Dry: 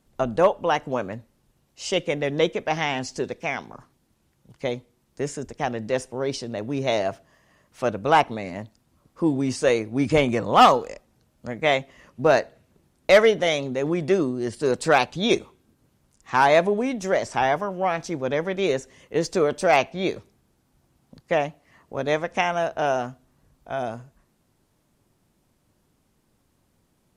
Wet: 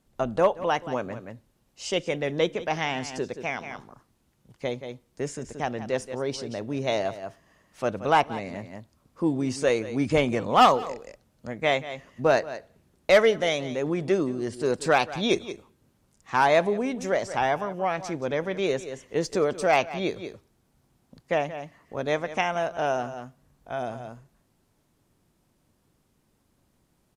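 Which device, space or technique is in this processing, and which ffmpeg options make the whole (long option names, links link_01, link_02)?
ducked delay: -filter_complex "[0:a]asplit=3[link_01][link_02][link_03];[link_02]adelay=177,volume=-4dB[link_04];[link_03]apad=whole_len=1205637[link_05];[link_04][link_05]sidechaincompress=threshold=-37dB:ratio=8:attack=26:release=194[link_06];[link_01][link_06]amix=inputs=2:normalize=0,volume=-3dB"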